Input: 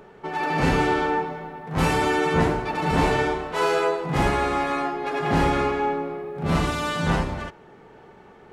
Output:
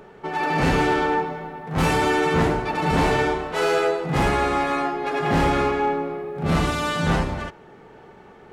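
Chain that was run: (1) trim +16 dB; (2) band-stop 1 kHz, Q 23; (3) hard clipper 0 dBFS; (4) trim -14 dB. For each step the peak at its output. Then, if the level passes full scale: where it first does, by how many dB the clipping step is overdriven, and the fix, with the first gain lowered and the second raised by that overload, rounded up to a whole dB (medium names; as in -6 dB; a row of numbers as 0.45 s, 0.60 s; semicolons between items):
+7.5 dBFS, +7.5 dBFS, 0.0 dBFS, -14.0 dBFS; step 1, 7.5 dB; step 1 +8 dB, step 4 -6 dB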